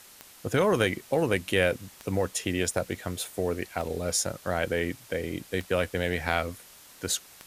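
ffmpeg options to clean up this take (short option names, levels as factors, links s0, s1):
-af "adeclick=t=4,afftdn=nr=21:nf=-52"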